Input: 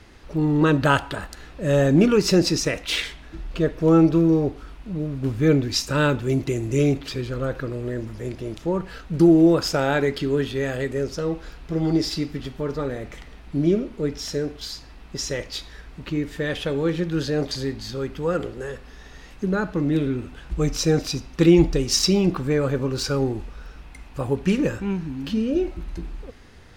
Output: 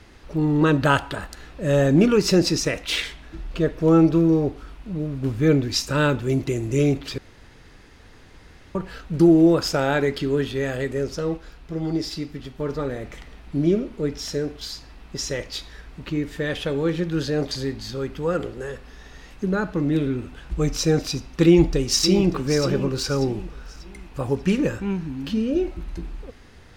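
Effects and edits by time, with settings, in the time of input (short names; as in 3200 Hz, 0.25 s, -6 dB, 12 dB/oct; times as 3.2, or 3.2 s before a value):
7.18–8.75 room tone
11.37–12.6 gain -4 dB
21.44–22.34 echo throw 0.59 s, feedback 35%, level -10.5 dB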